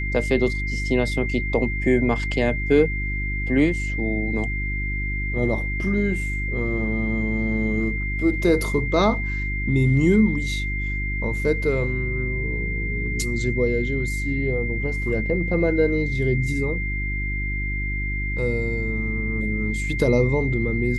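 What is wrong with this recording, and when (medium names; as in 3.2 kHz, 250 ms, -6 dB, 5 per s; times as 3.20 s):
hum 50 Hz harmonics 7 -27 dBFS
whine 2.1 kHz -28 dBFS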